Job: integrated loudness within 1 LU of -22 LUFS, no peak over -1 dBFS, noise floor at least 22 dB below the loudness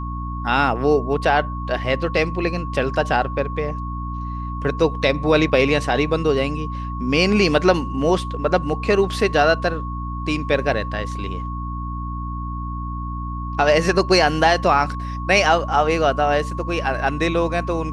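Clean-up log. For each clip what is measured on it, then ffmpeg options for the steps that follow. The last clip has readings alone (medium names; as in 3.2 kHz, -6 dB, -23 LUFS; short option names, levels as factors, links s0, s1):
hum 60 Hz; highest harmonic 300 Hz; hum level -26 dBFS; steady tone 1.1 kHz; tone level -31 dBFS; loudness -20.5 LUFS; peak level -2.5 dBFS; loudness target -22.0 LUFS
-> -af "bandreject=f=60:t=h:w=4,bandreject=f=120:t=h:w=4,bandreject=f=180:t=h:w=4,bandreject=f=240:t=h:w=4,bandreject=f=300:t=h:w=4"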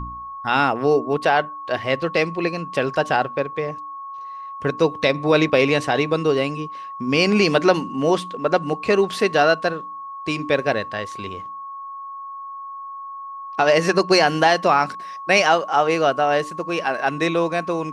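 hum not found; steady tone 1.1 kHz; tone level -31 dBFS
-> -af "bandreject=f=1100:w=30"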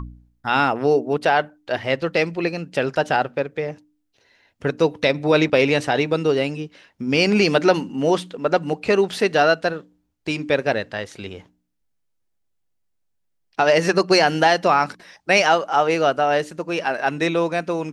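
steady tone not found; loudness -20.0 LUFS; peak level -2.5 dBFS; loudness target -22.0 LUFS
-> -af "volume=0.794"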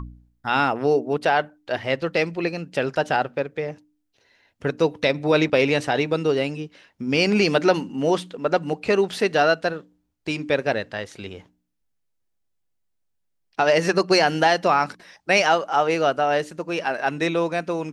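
loudness -22.0 LUFS; peak level -4.5 dBFS; noise floor -73 dBFS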